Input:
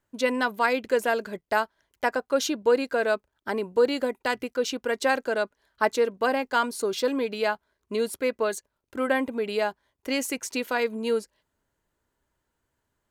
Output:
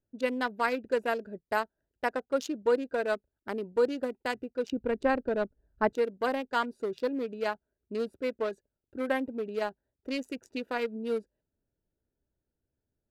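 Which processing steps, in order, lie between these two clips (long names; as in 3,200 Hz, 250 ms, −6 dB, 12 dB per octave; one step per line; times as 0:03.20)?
adaptive Wiener filter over 41 samples
0:04.72–0:05.93: RIAA equalisation playback
level −4 dB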